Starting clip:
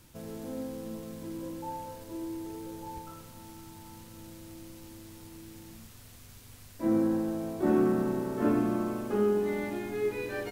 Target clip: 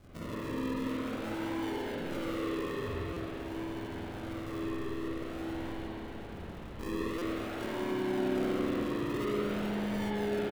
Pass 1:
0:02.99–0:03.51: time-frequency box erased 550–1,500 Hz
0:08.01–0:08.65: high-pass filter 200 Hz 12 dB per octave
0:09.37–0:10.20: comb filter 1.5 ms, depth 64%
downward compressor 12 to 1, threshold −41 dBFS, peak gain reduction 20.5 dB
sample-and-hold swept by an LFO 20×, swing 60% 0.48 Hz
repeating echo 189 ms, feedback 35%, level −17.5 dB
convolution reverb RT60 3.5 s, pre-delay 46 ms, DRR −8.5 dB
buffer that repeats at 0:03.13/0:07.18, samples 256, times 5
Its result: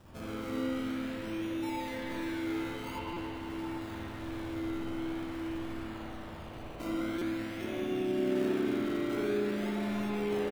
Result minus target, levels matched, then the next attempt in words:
sample-and-hold swept by an LFO: distortion −10 dB
0:02.99–0:03.51: time-frequency box erased 550–1,500 Hz
0:08.01–0:08.65: high-pass filter 200 Hz 12 dB per octave
0:09.37–0:10.20: comb filter 1.5 ms, depth 64%
downward compressor 12 to 1, threshold −41 dBFS, peak gain reduction 20.5 dB
sample-and-hold swept by an LFO 47×, swing 60% 0.48 Hz
repeating echo 189 ms, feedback 35%, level −17.5 dB
convolution reverb RT60 3.5 s, pre-delay 46 ms, DRR −8.5 dB
buffer that repeats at 0:03.13/0:07.18, samples 256, times 5

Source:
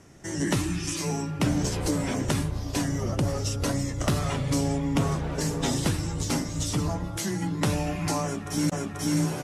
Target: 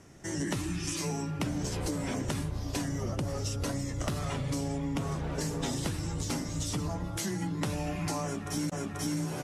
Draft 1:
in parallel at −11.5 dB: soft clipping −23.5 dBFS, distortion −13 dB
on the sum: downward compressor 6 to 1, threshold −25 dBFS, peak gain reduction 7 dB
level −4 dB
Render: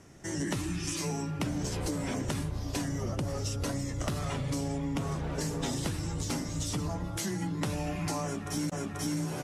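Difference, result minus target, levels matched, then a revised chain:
soft clipping: distortion +8 dB
in parallel at −11.5 dB: soft clipping −17 dBFS, distortion −22 dB
on the sum: downward compressor 6 to 1, threshold −25 dBFS, peak gain reduction 7.5 dB
level −4 dB

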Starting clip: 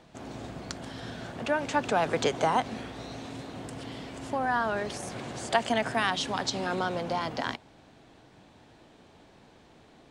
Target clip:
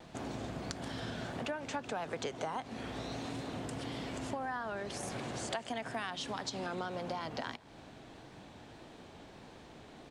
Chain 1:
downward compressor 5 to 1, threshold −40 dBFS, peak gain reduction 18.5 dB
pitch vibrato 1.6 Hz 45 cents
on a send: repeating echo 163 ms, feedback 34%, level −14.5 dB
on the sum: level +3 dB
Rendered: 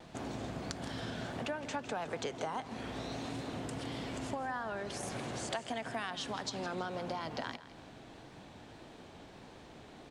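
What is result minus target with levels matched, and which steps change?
echo-to-direct +12 dB
change: repeating echo 163 ms, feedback 34%, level −26.5 dB

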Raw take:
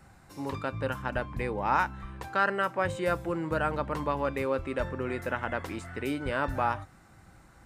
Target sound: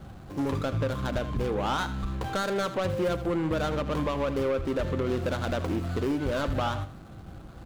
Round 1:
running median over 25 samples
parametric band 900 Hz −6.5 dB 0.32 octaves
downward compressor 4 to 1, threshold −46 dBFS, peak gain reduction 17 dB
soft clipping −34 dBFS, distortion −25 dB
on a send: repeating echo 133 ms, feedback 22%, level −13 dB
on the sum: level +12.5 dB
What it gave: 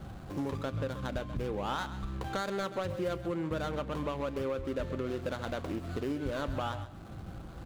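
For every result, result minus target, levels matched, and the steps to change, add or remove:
echo 53 ms late; downward compressor: peak gain reduction +8 dB
change: repeating echo 80 ms, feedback 22%, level −13 dB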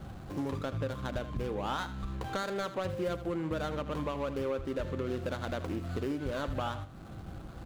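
downward compressor: peak gain reduction +8 dB
change: downward compressor 4 to 1, threshold −35 dBFS, peak gain reduction 9 dB

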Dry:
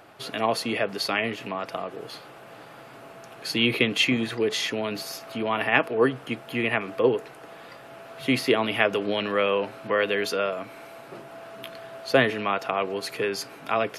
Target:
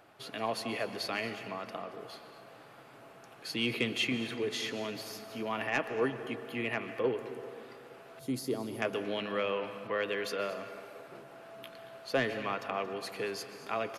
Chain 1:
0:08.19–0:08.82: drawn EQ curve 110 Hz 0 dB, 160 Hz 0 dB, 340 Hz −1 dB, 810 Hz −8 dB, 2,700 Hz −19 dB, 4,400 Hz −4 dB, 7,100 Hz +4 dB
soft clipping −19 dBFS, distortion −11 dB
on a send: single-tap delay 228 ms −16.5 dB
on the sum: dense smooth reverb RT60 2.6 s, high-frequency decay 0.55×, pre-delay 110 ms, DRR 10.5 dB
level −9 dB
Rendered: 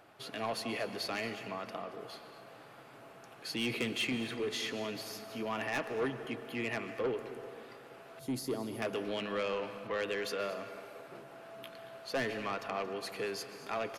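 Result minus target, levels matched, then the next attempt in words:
soft clipping: distortion +11 dB
0:08.19–0:08.82: drawn EQ curve 110 Hz 0 dB, 160 Hz 0 dB, 340 Hz −1 dB, 810 Hz −8 dB, 2,700 Hz −19 dB, 4,400 Hz −4 dB, 7,100 Hz +4 dB
soft clipping −9 dBFS, distortion −22 dB
on a send: single-tap delay 228 ms −16.5 dB
on the sum: dense smooth reverb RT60 2.6 s, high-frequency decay 0.55×, pre-delay 110 ms, DRR 10.5 dB
level −9 dB

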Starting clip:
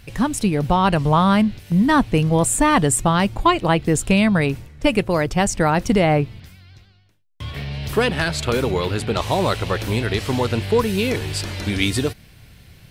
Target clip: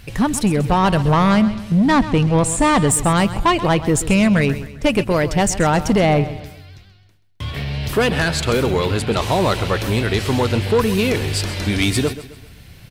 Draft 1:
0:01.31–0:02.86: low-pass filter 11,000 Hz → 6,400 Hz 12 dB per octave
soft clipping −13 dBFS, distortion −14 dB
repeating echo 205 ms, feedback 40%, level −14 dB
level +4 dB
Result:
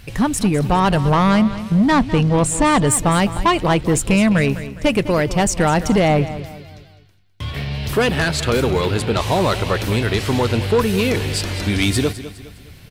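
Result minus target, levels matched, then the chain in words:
echo 74 ms late
0:01.31–0:02.86: low-pass filter 11,000 Hz → 6,400 Hz 12 dB per octave
soft clipping −13 dBFS, distortion −14 dB
repeating echo 131 ms, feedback 40%, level −14 dB
level +4 dB

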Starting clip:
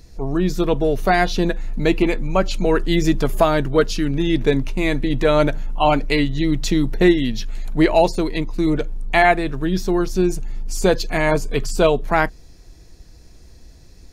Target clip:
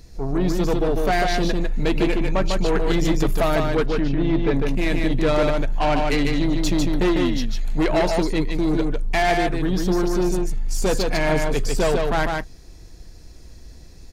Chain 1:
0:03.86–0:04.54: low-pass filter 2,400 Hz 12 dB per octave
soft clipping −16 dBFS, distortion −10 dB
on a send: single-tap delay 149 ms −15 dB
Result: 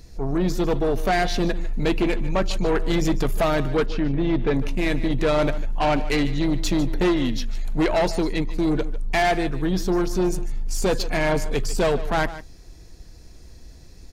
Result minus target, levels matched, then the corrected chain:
echo-to-direct −11.5 dB
0:03.86–0:04.54: low-pass filter 2,400 Hz 12 dB per octave
soft clipping −16 dBFS, distortion −10 dB
on a send: single-tap delay 149 ms −3.5 dB

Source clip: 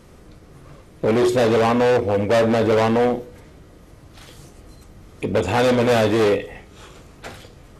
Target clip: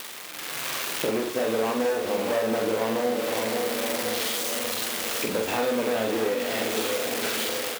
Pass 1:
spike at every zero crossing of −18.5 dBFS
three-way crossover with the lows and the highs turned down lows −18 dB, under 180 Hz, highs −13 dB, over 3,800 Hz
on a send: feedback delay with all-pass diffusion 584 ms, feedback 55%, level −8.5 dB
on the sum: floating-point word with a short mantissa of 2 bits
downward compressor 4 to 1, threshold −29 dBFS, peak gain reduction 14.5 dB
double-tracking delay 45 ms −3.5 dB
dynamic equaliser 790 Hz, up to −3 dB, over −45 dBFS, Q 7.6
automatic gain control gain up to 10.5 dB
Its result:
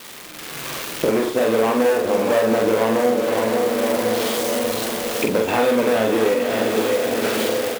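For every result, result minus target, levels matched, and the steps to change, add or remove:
downward compressor: peak gain reduction −8 dB; spike at every zero crossing: distortion −11 dB
change: downward compressor 4 to 1, threshold −39.5 dBFS, peak gain reduction 22.5 dB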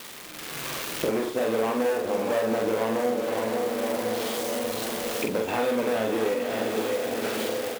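spike at every zero crossing: distortion −11 dB
change: spike at every zero crossing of −7.5 dBFS

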